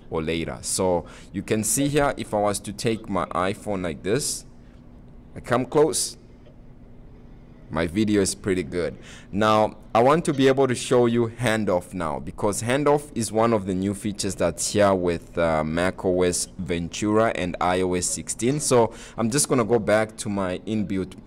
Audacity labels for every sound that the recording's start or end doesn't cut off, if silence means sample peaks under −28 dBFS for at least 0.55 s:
5.370000	6.100000	sound